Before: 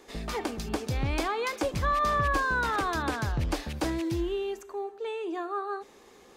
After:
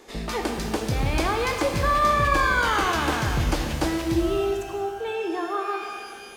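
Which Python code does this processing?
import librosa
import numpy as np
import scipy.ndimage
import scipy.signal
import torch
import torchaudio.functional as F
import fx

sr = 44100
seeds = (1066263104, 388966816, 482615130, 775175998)

y = fx.rev_shimmer(x, sr, seeds[0], rt60_s=1.8, semitones=12, shimmer_db=-8, drr_db=3.5)
y = y * librosa.db_to_amplitude(4.0)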